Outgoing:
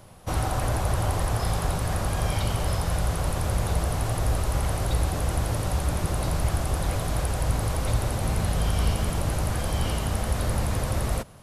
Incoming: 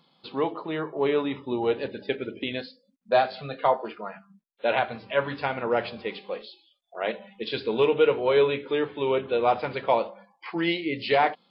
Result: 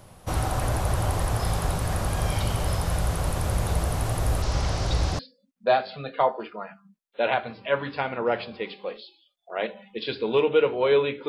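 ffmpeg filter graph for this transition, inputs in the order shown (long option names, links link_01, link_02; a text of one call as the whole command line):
ffmpeg -i cue0.wav -i cue1.wav -filter_complex "[0:a]asettb=1/sr,asplit=3[link_01][link_02][link_03];[link_01]atrim=end=4.424[link_04];[link_02]atrim=start=4.42:end=5.19,asetpts=PTS-STARTPTS,afade=type=in:duration=0.004:curve=qsin,afade=type=out:start_time=0.766:duration=0.004:curve=qsin,lowpass=frequency=5400:width_type=q:width=2.4[link_05];[link_03]atrim=start=5.186[link_06];[link_04][link_05]acrossfade=duration=0.004:curve1=hsin:curve2=qsin[link_07];[link_07][link_06]acrossfade=duration=0.004:curve1=qsin:curve2=hsin,apad=whole_dur=11.28,atrim=end=11.28,atrim=end=5.192[link_08];[1:a]atrim=start=2.638:end=8.73[link_09];[link_08][link_09]acrossfade=duration=0.004:curve1=hsin:curve2=hsin" out.wav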